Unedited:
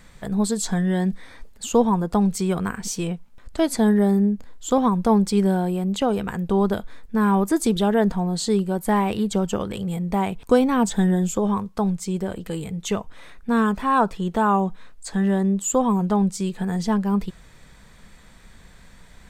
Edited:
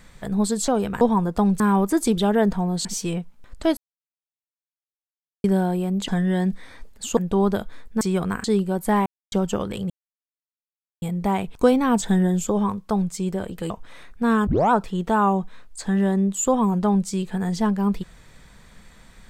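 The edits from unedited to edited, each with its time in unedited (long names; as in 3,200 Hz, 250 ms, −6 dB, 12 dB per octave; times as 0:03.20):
0:00.68–0:01.77: swap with 0:06.02–0:06.35
0:02.36–0:02.79: swap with 0:07.19–0:08.44
0:03.71–0:05.38: silence
0:09.06–0:09.32: silence
0:09.90: splice in silence 1.12 s
0:12.58–0:12.97: remove
0:13.74: tape start 0.25 s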